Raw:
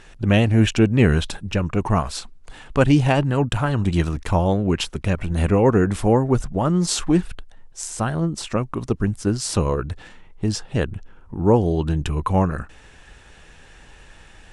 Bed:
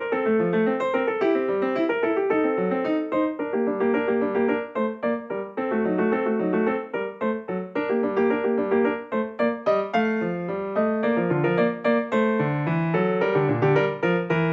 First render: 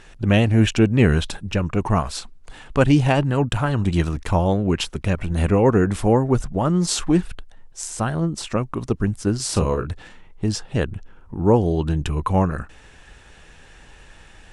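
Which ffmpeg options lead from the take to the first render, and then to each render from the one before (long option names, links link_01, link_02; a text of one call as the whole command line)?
ffmpeg -i in.wav -filter_complex "[0:a]asettb=1/sr,asplit=3[link_01][link_02][link_03];[link_01]atrim=end=9.364[link_04];[link_02]atrim=start=9.36:end=9.91,asetpts=PTS-STARTPTS,afade=type=in:duration=0.004:curve=qsin,afade=type=out:start_time=0.546:duration=0.004:curve=qsin,asplit=2[link_05][link_06];[link_06]adelay=38,volume=-8dB[link_07];[link_05][link_07]amix=inputs=2:normalize=0,atrim=end_sample=24255[link_08];[link_03]atrim=start=9.906[link_09];[link_04][link_08]acrossfade=duration=0.004:curve1=hsin:curve2=qsin[link_10];[link_10][link_09]acrossfade=duration=0.004:curve1=qsin:curve2=hsin" out.wav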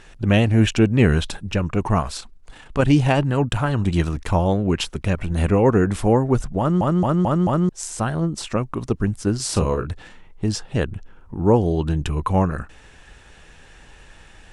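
ffmpeg -i in.wav -filter_complex "[0:a]asplit=3[link_01][link_02][link_03];[link_01]afade=type=out:start_time=2.14:duration=0.02[link_04];[link_02]tremolo=f=30:d=0.462,afade=type=in:start_time=2.14:duration=0.02,afade=type=out:start_time=2.83:duration=0.02[link_05];[link_03]afade=type=in:start_time=2.83:duration=0.02[link_06];[link_04][link_05][link_06]amix=inputs=3:normalize=0,asplit=6[link_07][link_08][link_09][link_10][link_11][link_12];[link_07]atrim=end=6.812[link_13];[link_08]atrim=start=6.588:end=6.812[link_14];[link_09]atrim=start=6.588:end=6.812[link_15];[link_10]atrim=start=6.588:end=6.812[link_16];[link_11]atrim=start=6.588:end=6.812[link_17];[link_12]atrim=start=7.688[link_18];[link_13][link_14]acrossfade=duration=0.004:curve1=hsin:curve2=hsin[link_19];[link_19][link_15]acrossfade=duration=0.004:curve1=hsin:curve2=hsin[link_20];[link_20][link_16]acrossfade=duration=0.004:curve1=hsin:curve2=hsin[link_21];[link_21][link_17]acrossfade=duration=0.004:curve1=hsin:curve2=hsin[link_22];[link_22][link_18]acrossfade=duration=0.004:curve1=hsin:curve2=hsin" out.wav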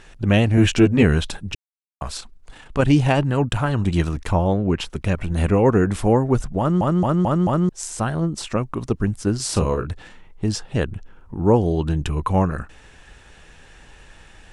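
ffmpeg -i in.wav -filter_complex "[0:a]asettb=1/sr,asplit=3[link_01][link_02][link_03];[link_01]atrim=end=0.564[link_04];[link_02]atrim=start=0.56:end=1.03,asetpts=PTS-STARTPTS,afade=type=in:duration=0.004:curve=qsin,afade=type=out:start_time=0.466:duration=0.004:curve=qsin,asplit=2[link_05][link_06];[link_06]adelay=12,volume=-2.5dB[link_07];[link_05][link_07]amix=inputs=2:normalize=0,atrim=end_sample=20727[link_08];[link_03]atrim=start=1.026[link_09];[link_04][link_08]acrossfade=duration=0.004:curve1=hsin:curve2=qsin[link_10];[link_10][link_09]acrossfade=duration=0.004:curve1=qsin:curve2=hsin,asettb=1/sr,asplit=3[link_11][link_12][link_13];[link_11]atrim=end=4.324[link_14];[link_12]atrim=start=4.32:end=4.9,asetpts=PTS-STARTPTS,afade=type=in:duration=0.004:curve=qsin,afade=type=out:start_time=0.576:duration=0.004:curve=qsin,highshelf=frequency=3300:gain=-8[link_15];[link_13]atrim=start=4.896[link_16];[link_14][link_15]acrossfade=duration=0.004:curve1=hsin:curve2=qsin[link_17];[link_17][link_16]acrossfade=duration=0.004:curve1=qsin:curve2=hsin,asplit=3[link_18][link_19][link_20];[link_18]atrim=end=1.55,asetpts=PTS-STARTPTS,afade=type=out:start_time=1.546:duration=0.004:curve=hsin[link_21];[link_19]atrim=start=1.55:end=2.01,asetpts=PTS-STARTPTS,volume=0[link_22];[link_20]atrim=start=2.01,asetpts=PTS-STARTPTS,afade=type=in:duration=0.004:curve=hsin[link_23];[link_21][link_22][link_23]concat=n=3:v=0:a=1" out.wav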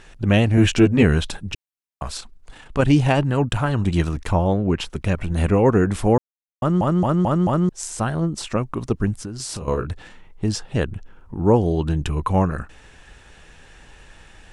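ffmpeg -i in.wav -filter_complex "[0:a]asettb=1/sr,asplit=3[link_01][link_02][link_03];[link_01]atrim=end=9.134[link_04];[link_02]atrim=start=9.13:end=9.68,asetpts=PTS-STARTPTS,afade=type=in:duration=0.004:curve=qsin,afade=type=out:start_time=0.546:duration=0.004:curve=qsin,acompressor=threshold=-26dB:ratio=16:attack=3.2:release=140:knee=1:detection=peak[link_05];[link_03]atrim=start=9.676[link_06];[link_04][link_05]acrossfade=duration=0.004:curve1=hsin:curve2=qsin[link_07];[link_07][link_06]acrossfade=duration=0.004:curve1=qsin:curve2=hsin,asplit=3[link_08][link_09][link_10];[link_08]atrim=end=6.18,asetpts=PTS-STARTPTS,afade=type=out:start_time=6.176:duration=0.004:curve=hsin[link_11];[link_09]atrim=start=6.18:end=6.62,asetpts=PTS-STARTPTS,volume=0[link_12];[link_10]atrim=start=6.62,asetpts=PTS-STARTPTS,afade=type=in:duration=0.004:curve=hsin[link_13];[link_11][link_12][link_13]concat=n=3:v=0:a=1" out.wav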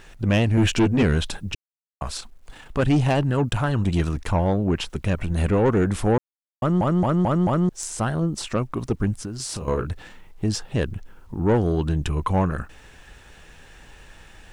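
ffmpeg -i in.wav -af "aeval=exprs='(tanh(4.47*val(0)+0.2)-tanh(0.2))/4.47':channel_layout=same,acrusher=bits=10:mix=0:aa=0.000001" out.wav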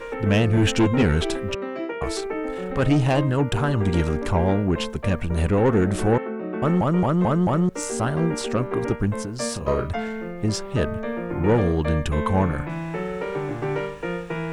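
ffmpeg -i in.wav -i bed.wav -filter_complex "[1:a]volume=-6.5dB[link_01];[0:a][link_01]amix=inputs=2:normalize=0" out.wav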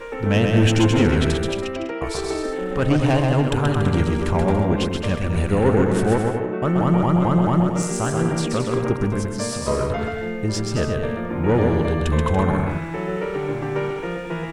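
ffmpeg -i in.wav -af "aecho=1:1:130|221|284.7|329.3|360.5:0.631|0.398|0.251|0.158|0.1" out.wav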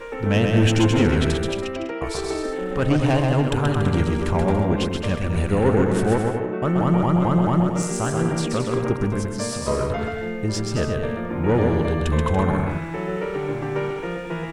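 ffmpeg -i in.wav -af "volume=-1dB" out.wav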